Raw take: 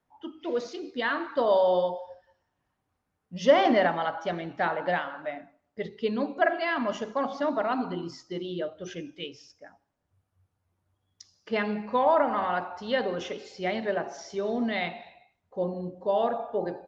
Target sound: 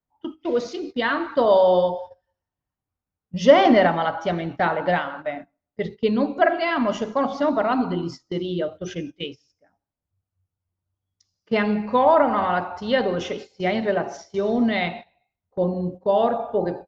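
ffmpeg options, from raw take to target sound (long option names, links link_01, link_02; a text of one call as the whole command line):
ffmpeg -i in.wav -af "agate=range=-18dB:threshold=-41dB:ratio=16:detection=peak,lowshelf=frequency=150:gain=10,bandreject=frequency=1700:width=23,volume=5.5dB" out.wav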